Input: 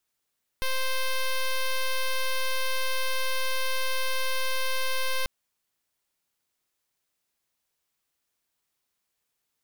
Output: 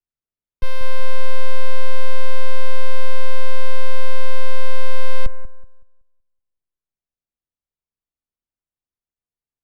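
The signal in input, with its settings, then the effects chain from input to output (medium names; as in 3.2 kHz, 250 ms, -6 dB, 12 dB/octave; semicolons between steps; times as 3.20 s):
pulse 523 Hz, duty 7% -25.5 dBFS 4.64 s
tilt EQ -3.5 dB/octave; on a send: bucket-brigade echo 187 ms, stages 2048, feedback 40%, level -10.5 dB; on the sum: three bands expanded up and down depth 40%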